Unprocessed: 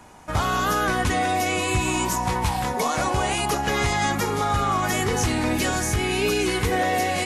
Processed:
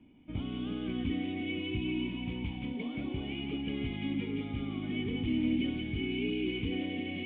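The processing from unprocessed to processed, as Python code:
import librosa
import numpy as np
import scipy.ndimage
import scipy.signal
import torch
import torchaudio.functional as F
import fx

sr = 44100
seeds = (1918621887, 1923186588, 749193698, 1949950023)

y = fx.formant_cascade(x, sr, vowel='i')
y = fx.echo_wet_highpass(y, sr, ms=173, feedback_pct=65, hz=1800.0, wet_db=-3.0)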